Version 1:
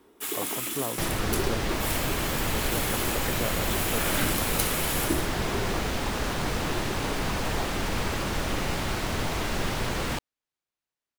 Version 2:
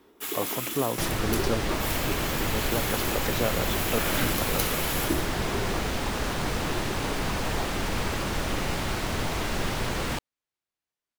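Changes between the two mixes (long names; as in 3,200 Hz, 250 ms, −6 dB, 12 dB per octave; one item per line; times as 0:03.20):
speech +5.0 dB
first sound: add parametric band 9,000 Hz −7 dB 0.36 octaves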